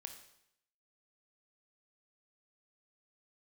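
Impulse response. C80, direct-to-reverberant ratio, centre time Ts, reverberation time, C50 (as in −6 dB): 10.5 dB, 5.0 dB, 17 ms, 0.75 s, 8.5 dB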